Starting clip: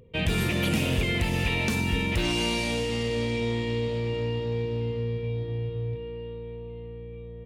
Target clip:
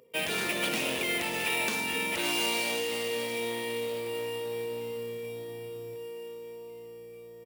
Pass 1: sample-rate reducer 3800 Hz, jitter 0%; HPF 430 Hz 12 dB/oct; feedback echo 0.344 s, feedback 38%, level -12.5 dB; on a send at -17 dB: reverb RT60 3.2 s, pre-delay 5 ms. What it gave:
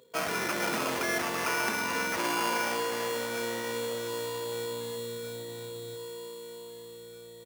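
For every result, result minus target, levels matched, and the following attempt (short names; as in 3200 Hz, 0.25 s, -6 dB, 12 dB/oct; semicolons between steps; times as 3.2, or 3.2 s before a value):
sample-rate reducer: distortion +6 dB; echo-to-direct +4 dB
sample-rate reducer 13000 Hz, jitter 0%; HPF 430 Hz 12 dB/oct; feedback echo 0.344 s, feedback 38%, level -12.5 dB; on a send at -17 dB: reverb RT60 3.2 s, pre-delay 5 ms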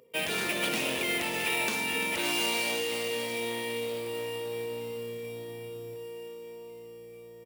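echo-to-direct +4 dB
sample-rate reducer 13000 Hz, jitter 0%; HPF 430 Hz 12 dB/oct; feedback echo 0.344 s, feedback 38%, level -19 dB; on a send at -17 dB: reverb RT60 3.2 s, pre-delay 5 ms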